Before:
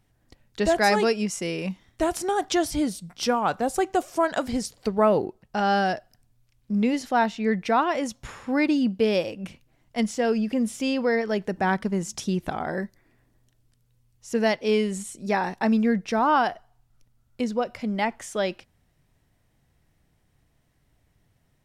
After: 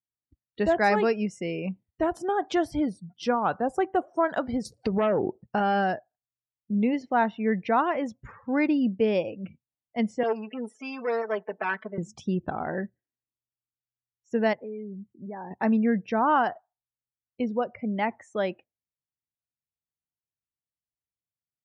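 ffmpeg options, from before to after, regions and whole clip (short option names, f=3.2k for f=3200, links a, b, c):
-filter_complex "[0:a]asettb=1/sr,asplit=3[a][b][c];[a]atrim=end=4.654[d];[b]atrim=start=4.65:end=5.8,asetpts=PTS-STARTPTS,afade=t=in:d=0.004:c=qsin,afade=t=out:st=1.146:d=0.004:c=qsin,aeval=exprs='0.355*sin(PI/2*1.58*val(0)/0.355)':c=same,acompressor=threshold=-19dB:ratio=8:attack=3.2:release=140:knee=1:detection=peak[e];[c]atrim=start=5.796[f];[d][e]acrossfade=d=0.004:c1=hsin:c2=qsin[g];[g][f]acrossfade=d=0.004:c1=qsin:c2=hsin,asettb=1/sr,asplit=3[h][i][j];[h]atrim=end=10.234[k];[i]atrim=start=10.23:end=11.98,asetpts=PTS-STARTPTS,afade=t=in:d=0.004:c=qsin,afade=t=out:st=1.746:d=0.004:c=qsin,aeval=exprs='if(lt(val(0),0),0.251*val(0),val(0))':c=same,highpass=440,aecho=1:1:4.6:0.93,atrim=end_sample=77175[l];[j]atrim=start=11.976[m];[k][l]acrossfade=d=0.004:c1=hsin:c2=qsin[n];[n][m]acrossfade=d=0.004:c1=qsin:c2=hsin,asettb=1/sr,asplit=3[o][p][q];[o]atrim=end=14.534[r];[p]atrim=start=14.53:end=15.51,asetpts=PTS-STARTPTS,afade=t=in:d=0.004:c=qsin,afade=t=out:st=0.976:d=0.004:c=qsin,lowpass=f=1.1k:p=1,acompressor=threshold=-34dB:ratio=4:attack=3.2:release=140:knee=1:detection=peak[s];[q]atrim=start=15.506[t];[r][s]acrossfade=d=0.004:c1=hsin:c2=qsin[u];[u][t]acrossfade=d=0.004:c1=qsin:c2=hsin,highpass=58,afftdn=nr=36:nf=-39,bass=f=250:g=0,treble=f=4k:g=-15,volume=-1.5dB"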